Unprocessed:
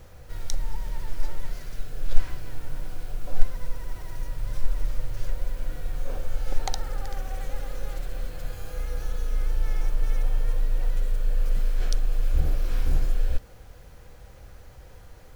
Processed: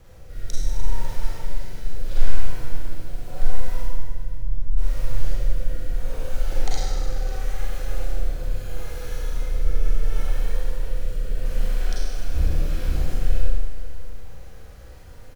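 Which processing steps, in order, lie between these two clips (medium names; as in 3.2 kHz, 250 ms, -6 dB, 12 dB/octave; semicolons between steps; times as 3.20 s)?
3.81–4.78 s: resonances exaggerated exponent 1.5; rotary cabinet horn 0.75 Hz, later 7.5 Hz, at 11.72 s; on a send: delay 548 ms -16.5 dB; on the sum: Schroeder reverb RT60 1.5 s, combs from 33 ms, DRR -6 dB; trim -1 dB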